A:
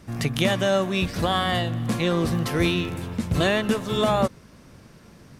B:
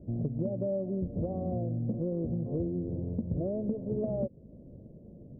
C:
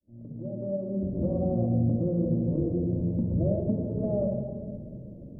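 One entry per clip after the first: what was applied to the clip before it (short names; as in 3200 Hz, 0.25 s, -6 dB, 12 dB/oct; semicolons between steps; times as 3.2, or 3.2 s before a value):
elliptic low-pass 600 Hz, stop band 60 dB; compressor, threshold -29 dBFS, peak gain reduction 11 dB
opening faded in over 1.31 s; shoebox room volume 2000 m³, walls mixed, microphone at 2.5 m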